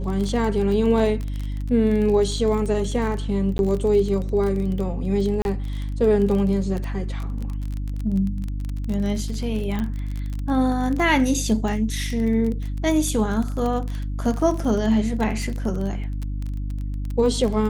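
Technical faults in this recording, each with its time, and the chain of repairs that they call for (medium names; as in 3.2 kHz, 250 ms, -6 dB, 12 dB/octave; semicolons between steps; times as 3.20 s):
crackle 24 per s -26 dBFS
hum 50 Hz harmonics 6 -27 dBFS
3.58–3.59 s: dropout 11 ms
5.42–5.45 s: dropout 31 ms
9.79 s: pop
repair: de-click; de-hum 50 Hz, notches 6; interpolate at 3.58 s, 11 ms; interpolate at 5.42 s, 31 ms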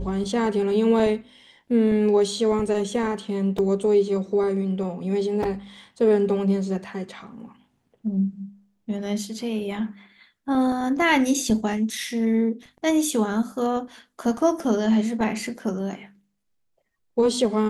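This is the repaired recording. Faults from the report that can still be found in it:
nothing left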